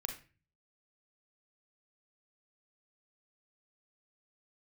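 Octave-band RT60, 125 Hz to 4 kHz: 0.70 s, 0.55 s, 0.35 s, 0.30 s, 0.40 s, 0.30 s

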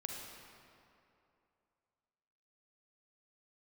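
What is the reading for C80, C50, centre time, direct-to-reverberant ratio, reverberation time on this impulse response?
2.5 dB, 0.5 dB, 103 ms, 0.0 dB, 2.7 s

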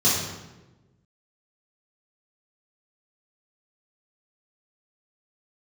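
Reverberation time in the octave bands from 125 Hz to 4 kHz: 1.6 s, 1.4 s, 1.2 s, 1.0 s, 0.90 s, 0.80 s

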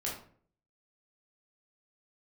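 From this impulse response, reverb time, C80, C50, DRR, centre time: 0.50 s, 9.5 dB, 4.5 dB, -5.0 dB, 36 ms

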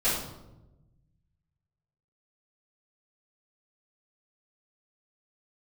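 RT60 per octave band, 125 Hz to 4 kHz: 2.0 s, 1.4 s, 1.1 s, 0.85 s, 0.65 s, 0.60 s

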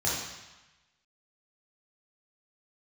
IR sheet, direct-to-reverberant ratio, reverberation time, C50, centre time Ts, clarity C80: -6.5 dB, 1.1 s, 0.0 dB, 71 ms, 3.5 dB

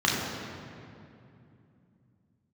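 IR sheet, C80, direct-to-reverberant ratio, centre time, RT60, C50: 1.5 dB, -4.5 dB, 114 ms, 2.7 s, 0.0 dB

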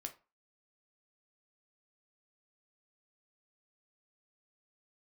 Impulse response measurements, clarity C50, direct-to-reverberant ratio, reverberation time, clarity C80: 15.0 dB, 5.0 dB, 0.30 s, 21.0 dB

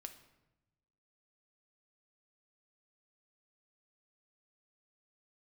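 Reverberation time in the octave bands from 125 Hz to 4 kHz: 1.4 s, 1.3 s, 1.0 s, 0.90 s, 0.80 s, 0.65 s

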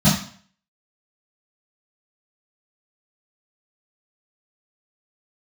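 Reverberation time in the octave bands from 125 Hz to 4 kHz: 0.45 s, 0.45 s, 0.55 s, 0.50 s, 0.50 s, 0.50 s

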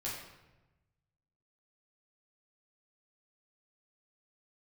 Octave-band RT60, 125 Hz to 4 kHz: 1.8 s, 1.3 s, 1.1 s, 1.0 s, 0.90 s, 0.75 s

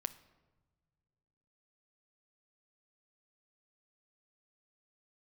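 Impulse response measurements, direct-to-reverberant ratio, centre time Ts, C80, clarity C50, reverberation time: 12.5 dB, 4 ms, 18.5 dB, 16.0 dB, no single decay rate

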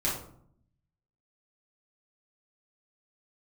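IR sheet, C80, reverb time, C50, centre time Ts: 8.5 dB, 0.65 s, 4.0 dB, 41 ms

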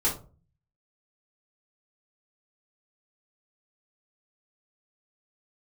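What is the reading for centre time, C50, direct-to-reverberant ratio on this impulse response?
22 ms, 8.5 dB, -8.0 dB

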